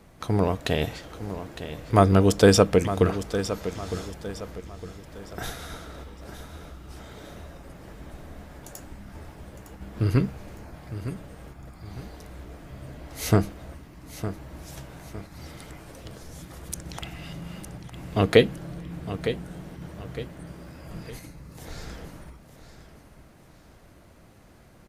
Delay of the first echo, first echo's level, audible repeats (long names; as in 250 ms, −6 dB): 909 ms, −11.5 dB, 3